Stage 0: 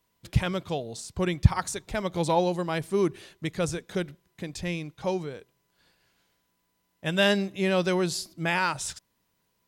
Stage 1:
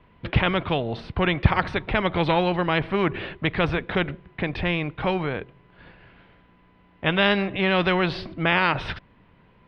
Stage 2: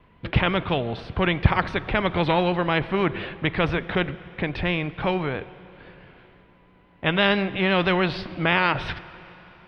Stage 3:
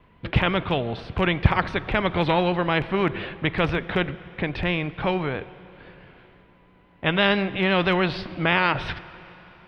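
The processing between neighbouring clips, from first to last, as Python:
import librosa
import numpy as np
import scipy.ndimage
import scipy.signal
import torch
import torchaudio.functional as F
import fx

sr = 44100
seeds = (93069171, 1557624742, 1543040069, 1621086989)

y1 = scipy.signal.sosfilt(scipy.signal.cheby2(4, 50, 6700.0, 'lowpass', fs=sr, output='sos'), x)
y1 = fx.low_shelf(y1, sr, hz=220.0, db=7.0)
y1 = fx.spectral_comp(y1, sr, ratio=2.0)
y1 = F.gain(torch.from_numpy(y1), -3.5).numpy()
y2 = fx.vibrato(y1, sr, rate_hz=6.0, depth_cents=36.0)
y2 = fx.rev_plate(y2, sr, seeds[0], rt60_s=3.8, hf_ratio=0.9, predelay_ms=0, drr_db=16.5)
y3 = fx.rattle_buzz(y2, sr, strikes_db=-23.0, level_db=-25.0)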